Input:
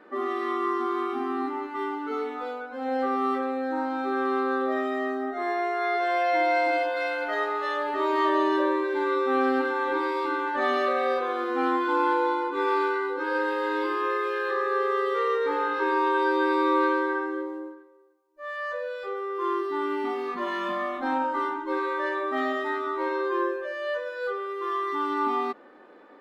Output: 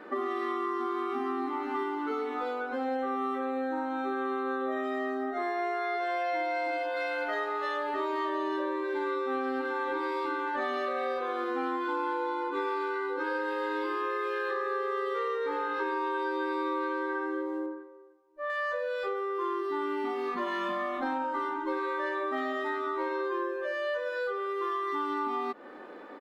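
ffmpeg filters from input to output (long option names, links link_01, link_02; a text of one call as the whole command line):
ffmpeg -i in.wav -filter_complex "[0:a]asplit=2[link_01][link_02];[link_02]afade=type=in:start_time=0.6:duration=0.01,afade=type=out:start_time=1.32:duration=0.01,aecho=0:1:510|1020|1530|2040|2550:0.298538|0.134342|0.060454|0.0272043|0.0122419[link_03];[link_01][link_03]amix=inputs=2:normalize=0,asettb=1/sr,asplit=3[link_04][link_05][link_06];[link_04]atrim=end=2.954[link_07];[link_05]atrim=start=2.95:end=4.84,asetpts=PTS-STARTPTS,afade=type=in:duration=0.004:curve=qsin,afade=type=out:start_time=1.886:duration=0.004:curve=qsin,asuperstop=centerf=4800:order=8:qfactor=3.7[link_08];[link_06]atrim=start=4.836[link_09];[link_07][link_08]acrossfade=duration=0.004:curve1=hsin:curve2=qsin[link_10];[link_10][link_09]acrossfade=duration=0.004:curve1=qsin:curve2=hsin,asettb=1/sr,asplit=3[link_11][link_12][link_13];[link_11]atrim=end=17.664[link_14];[link_12]atrim=start=17.66:end=18.5,asetpts=PTS-STARTPTS,afade=type=in:duration=0.004:curve=qsin,afade=type=out:start_time=0.836:duration=0.004:curve=qsin,lowpass=frequency=1600:poles=1[link_15];[link_13]atrim=start=18.496[link_16];[link_14][link_15]acrossfade=duration=0.004:curve1=hsin:curve2=qsin[link_17];[link_17][link_16]acrossfade=duration=0.004:curve1=qsin:curve2=hsin,acompressor=threshold=-35dB:ratio=6,volume=5.5dB" out.wav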